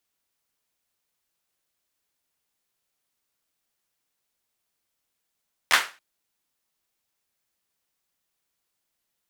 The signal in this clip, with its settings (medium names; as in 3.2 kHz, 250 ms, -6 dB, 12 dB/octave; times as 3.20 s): hand clap length 0.28 s, bursts 3, apart 12 ms, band 1.6 kHz, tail 0.31 s